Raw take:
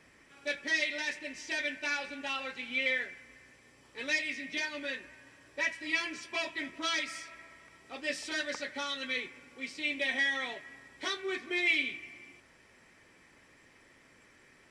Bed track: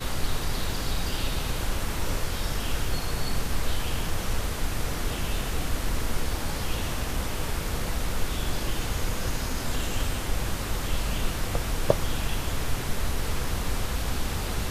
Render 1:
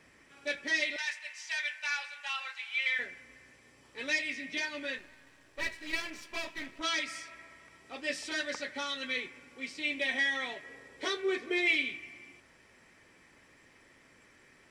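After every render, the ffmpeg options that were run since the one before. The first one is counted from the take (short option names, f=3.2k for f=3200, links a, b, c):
-filter_complex "[0:a]asettb=1/sr,asplit=3[a][b][c];[a]atrim=end=0.964[d];[b]atrim=start=0.96:end=2.99,asetpts=PTS-STARTPTS,afade=t=in:d=0.004:c=qsin,afade=t=out:st=2.026:d=0.004:c=qsin,highpass=f=880:w=0.5412,highpass=f=880:w=1.3066[e];[c]atrim=start=2.986[f];[d][e]acrossfade=d=0.004:c1=hsin:c2=qsin[g];[g][f]acrossfade=d=0.004:c1=qsin:c2=hsin,asettb=1/sr,asplit=3[h][i][j];[h]atrim=end=4.984[k];[i]atrim=start=4.98:end=6.81,asetpts=PTS-STARTPTS,afade=t=in:d=0.004:c=qsin,afade=t=out:st=1.826:d=0.004:c=qsin,aeval=exprs='if(lt(val(0),0),0.251*val(0),val(0))':c=same[l];[j]atrim=start=6.806[m];[k][l]acrossfade=d=0.004:c1=hsin:c2=qsin[n];[n][m]acrossfade=d=0.004:c1=qsin:c2=hsin,asettb=1/sr,asplit=3[o][p][q];[o]atrim=end=10.634[r];[p]atrim=start=10.63:end=11.76,asetpts=PTS-STARTPTS,afade=t=in:d=0.004:c=qsin,afade=t=out:st=1.126:d=0.004:c=qsin,equalizer=f=470:w=2.9:g=13[s];[q]atrim=start=11.756[t];[r][s]acrossfade=d=0.004:c1=hsin:c2=qsin[u];[u][t]acrossfade=d=0.004:c1=qsin:c2=hsin"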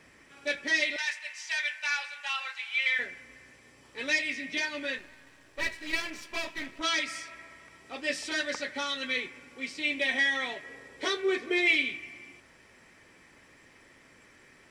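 -af "volume=3.5dB"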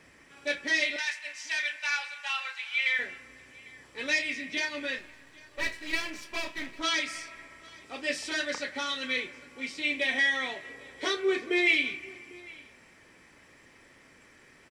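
-filter_complex "[0:a]asplit=2[a][b];[b]adelay=31,volume=-11.5dB[c];[a][c]amix=inputs=2:normalize=0,aecho=1:1:800:0.0668"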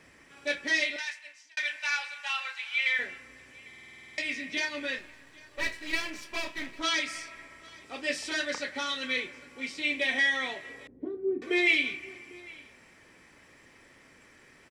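-filter_complex "[0:a]asettb=1/sr,asplit=3[a][b][c];[a]atrim=end=10.874[d];[b]atrim=start=10.87:end=11.42,asetpts=PTS-STARTPTS,afade=t=in:d=0.004:c=qsin,afade=t=out:st=0.546:d=0.004:c=qsin,lowpass=f=260:t=q:w=2.2[e];[c]atrim=start=11.416[f];[d][e]acrossfade=d=0.004:c1=hsin:c2=qsin[g];[g][f]acrossfade=d=0.004:c1=qsin:c2=hsin,asplit=12[h][i][j][k][l][m][n][o][p][q][r][s];[h]atrim=end=1.57,asetpts=PTS-STARTPTS,afade=t=out:st=0.76:d=0.81[t];[i]atrim=start=1.57:end=3.732,asetpts=PTS-STARTPTS,afade=t=in:d=0.004:c=hsin[u];[j]atrim=start=3.678:end=3.732[v];[k]atrim=start=3.678:end=3.732[w];[l]atrim=start=3.678:end=3.732[x];[m]atrim=start=3.678:end=3.732[y];[n]atrim=start=3.678:end=3.732[z];[o]atrim=start=3.678:end=3.732[aa];[p]atrim=start=3.678:end=3.732[ab];[q]atrim=start=3.678:end=3.732[ac];[r]atrim=start=3.678:end=3.732[ad];[s]atrim=start=4.178[ae];[t][u]concat=n=2:v=0:a=1[af];[af][v]acrossfade=d=0.004:c1=hsin:c2=hsin[ag];[ag][w]acrossfade=d=0.004:c1=hsin:c2=hsin[ah];[ah][x]acrossfade=d=0.004:c1=hsin:c2=hsin[ai];[ai][y]acrossfade=d=0.004:c1=hsin:c2=hsin[aj];[aj][z]acrossfade=d=0.004:c1=hsin:c2=hsin[ak];[ak][aa]acrossfade=d=0.004:c1=hsin:c2=hsin[al];[al][ab]acrossfade=d=0.004:c1=hsin:c2=hsin[am];[am][ac]acrossfade=d=0.004:c1=hsin:c2=hsin[an];[an][ad]acrossfade=d=0.004:c1=hsin:c2=hsin[ao];[ao][ae]acrossfade=d=0.004:c1=hsin:c2=hsin"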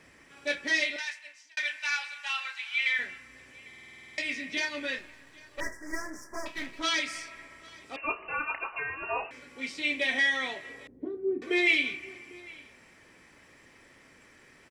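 -filter_complex "[0:a]asettb=1/sr,asplit=3[a][b][c];[a]atrim=end=1.714[d];[b]atrim=start=1.71:end=3.34,asetpts=PTS-STARTPTS,afade=t=in:d=0.004:c=qsin,afade=t=out:st=1.626:d=0.004:c=qsin,equalizer=f=480:t=o:w=1.2:g=-7[e];[c]atrim=start=3.336[f];[d][e]acrossfade=d=0.004:c1=hsin:c2=qsin[g];[g][f]acrossfade=d=0.004:c1=qsin:c2=hsin,asettb=1/sr,asplit=3[h][i][j];[h]atrim=end=5.604[k];[i]atrim=start=5.6:end=6.46,asetpts=PTS-STARTPTS,afade=t=in:d=0.004:c=qsin,afade=t=out:st=0.856:d=0.004:c=qsin,asuperstop=centerf=3200:order=12:qfactor=0.93[l];[j]atrim=start=6.456[m];[k][l]acrossfade=d=0.004:c1=hsin:c2=qsin[n];[n][m]acrossfade=d=0.004:c1=qsin:c2=hsin,asettb=1/sr,asplit=3[o][p][q];[o]atrim=end=7.964[r];[p]atrim=start=7.96:end=9.31,asetpts=PTS-STARTPTS,afade=t=in:d=0.004:c=qsin,afade=t=out:st=1.346:d=0.004:c=qsin,lowpass=f=2.6k:t=q:w=0.5098,lowpass=f=2.6k:t=q:w=0.6013,lowpass=f=2.6k:t=q:w=0.9,lowpass=f=2.6k:t=q:w=2.563,afreqshift=-3000[s];[q]atrim=start=9.306[t];[r][s]acrossfade=d=0.004:c1=hsin:c2=qsin[u];[u][t]acrossfade=d=0.004:c1=qsin:c2=hsin"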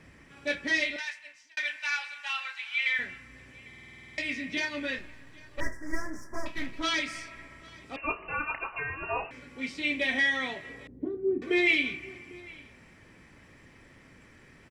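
-af "bass=f=250:g=10,treble=f=4k:g=-4"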